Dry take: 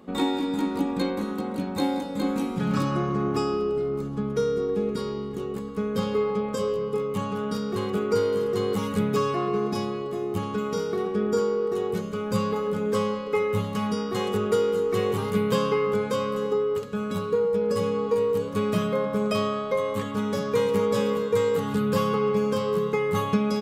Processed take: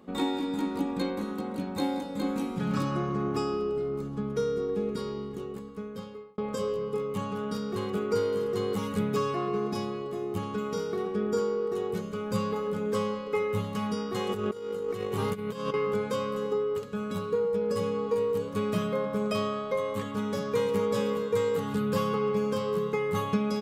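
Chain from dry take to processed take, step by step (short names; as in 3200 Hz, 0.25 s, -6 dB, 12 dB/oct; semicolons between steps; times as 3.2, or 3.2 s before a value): 5.23–6.38 fade out; 14.29–15.74 negative-ratio compressor -27 dBFS, ratio -0.5; gain -4 dB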